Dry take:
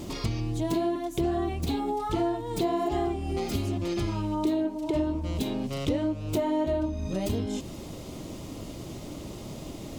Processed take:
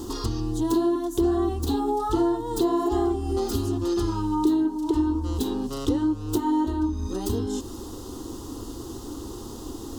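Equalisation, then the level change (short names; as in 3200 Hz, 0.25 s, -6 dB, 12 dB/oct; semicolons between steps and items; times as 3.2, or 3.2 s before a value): fixed phaser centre 610 Hz, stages 6; +6.0 dB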